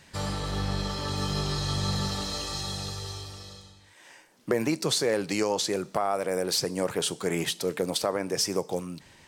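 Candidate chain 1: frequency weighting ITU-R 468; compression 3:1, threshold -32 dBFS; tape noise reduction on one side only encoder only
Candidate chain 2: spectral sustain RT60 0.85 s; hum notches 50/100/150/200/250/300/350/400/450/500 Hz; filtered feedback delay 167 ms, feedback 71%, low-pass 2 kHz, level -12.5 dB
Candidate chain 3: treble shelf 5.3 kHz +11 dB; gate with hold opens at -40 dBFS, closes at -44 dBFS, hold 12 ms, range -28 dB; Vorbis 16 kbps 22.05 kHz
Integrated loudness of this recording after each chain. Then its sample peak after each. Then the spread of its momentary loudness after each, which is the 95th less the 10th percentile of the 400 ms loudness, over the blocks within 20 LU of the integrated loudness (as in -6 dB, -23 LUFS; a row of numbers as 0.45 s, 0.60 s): -31.5 LUFS, -26.0 LUFS, -25.0 LUFS; -15.0 dBFS, -9.0 dBFS, -5.5 dBFS; 9 LU, 11 LU, 12 LU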